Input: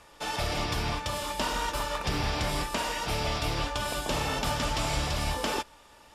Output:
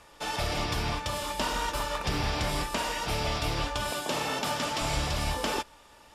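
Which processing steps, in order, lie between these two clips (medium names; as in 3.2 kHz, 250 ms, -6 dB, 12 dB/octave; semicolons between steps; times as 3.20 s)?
3.91–4.82 s: high-pass 180 Hz 12 dB/octave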